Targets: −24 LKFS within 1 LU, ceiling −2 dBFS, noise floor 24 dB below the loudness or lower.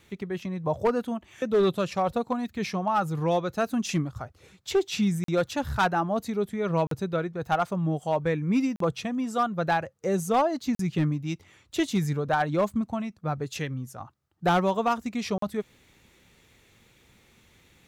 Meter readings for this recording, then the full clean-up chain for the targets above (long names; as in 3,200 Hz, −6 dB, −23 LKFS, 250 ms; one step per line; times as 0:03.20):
share of clipped samples 0.6%; peaks flattened at −17.0 dBFS; number of dropouts 5; longest dropout 43 ms; integrated loudness −27.5 LKFS; sample peak −17.0 dBFS; target loudness −24.0 LKFS
→ clipped peaks rebuilt −17 dBFS
repair the gap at 0:05.24/0:06.87/0:08.76/0:10.75/0:15.38, 43 ms
level +3.5 dB